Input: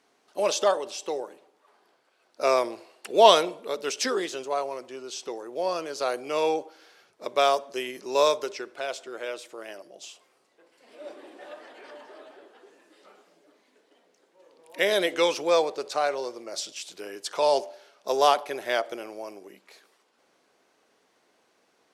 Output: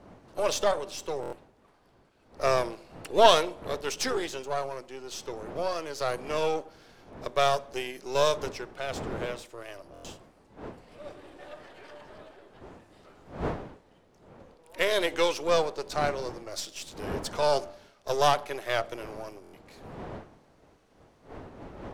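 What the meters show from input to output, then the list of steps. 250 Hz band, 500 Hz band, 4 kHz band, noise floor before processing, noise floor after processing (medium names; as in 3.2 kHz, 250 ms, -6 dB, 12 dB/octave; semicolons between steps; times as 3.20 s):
-1.5 dB, -3.0 dB, -2.5 dB, -68 dBFS, -62 dBFS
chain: partial rectifier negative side -7 dB; wind noise 590 Hz -45 dBFS; buffer glitch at 1.21/9.93/19.42 s, samples 1024, times 4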